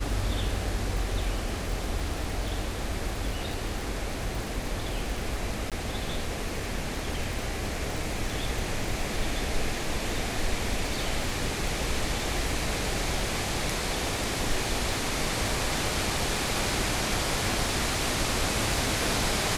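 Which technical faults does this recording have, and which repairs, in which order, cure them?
crackle 50 per s -32 dBFS
5.70–5.72 s: dropout 17 ms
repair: de-click; interpolate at 5.70 s, 17 ms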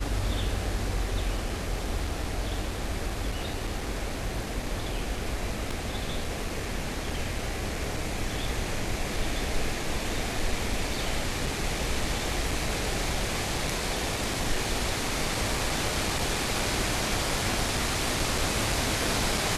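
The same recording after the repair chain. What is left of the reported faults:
nothing left

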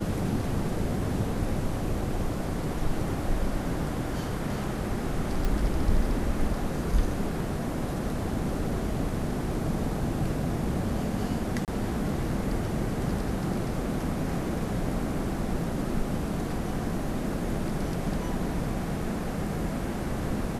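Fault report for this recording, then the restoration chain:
5.45 s: pop
11.65–11.68 s: dropout 28 ms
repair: de-click; interpolate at 11.65 s, 28 ms

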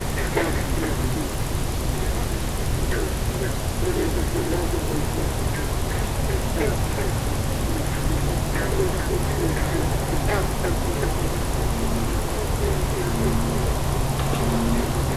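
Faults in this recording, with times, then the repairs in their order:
crackle 25 per s -30 dBFS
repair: de-click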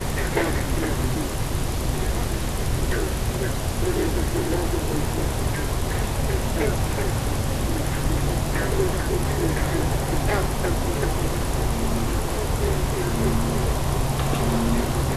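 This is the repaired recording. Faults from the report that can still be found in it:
nothing left

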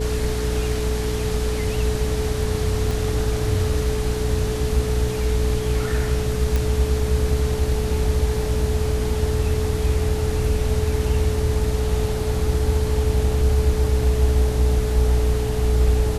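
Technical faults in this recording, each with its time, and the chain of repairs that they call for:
hum 60 Hz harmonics 5 -25 dBFS
whine 430 Hz -26 dBFS
2.91 s: pop
6.56 s: pop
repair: de-click; band-stop 430 Hz, Q 30; de-hum 60 Hz, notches 5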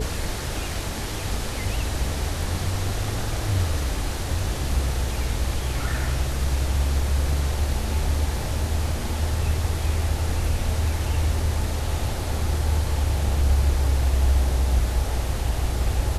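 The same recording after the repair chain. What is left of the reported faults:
2.91 s: pop

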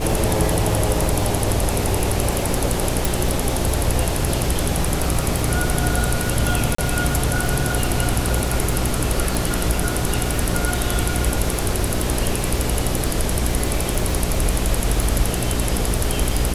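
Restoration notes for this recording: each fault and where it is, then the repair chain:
crackle 48 per s -23 dBFS
hum 60 Hz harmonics 7 -25 dBFS
3.05 s: pop
6.75–6.78 s: dropout 34 ms
9.35 s: pop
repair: de-click; de-hum 60 Hz, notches 7; interpolate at 6.75 s, 34 ms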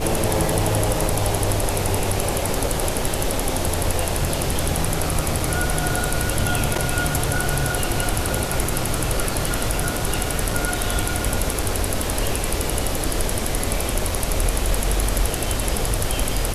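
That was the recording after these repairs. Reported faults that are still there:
nothing left

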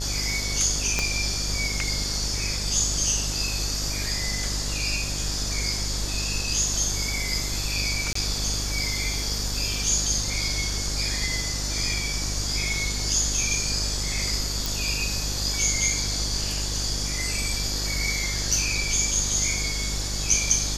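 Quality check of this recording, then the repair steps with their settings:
buzz 50 Hz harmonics 28 -31 dBFS
0.99 s: pop -9 dBFS
8.13–8.15 s: dropout 24 ms
14.66 s: pop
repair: de-click; de-hum 50 Hz, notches 28; interpolate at 8.13 s, 24 ms

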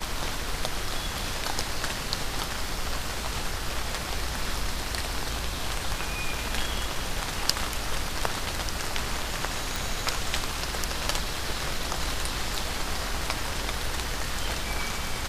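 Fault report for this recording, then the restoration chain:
9.76 s: pop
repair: de-click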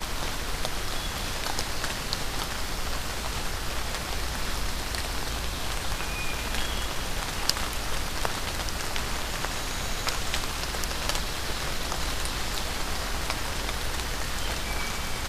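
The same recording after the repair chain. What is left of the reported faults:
nothing left

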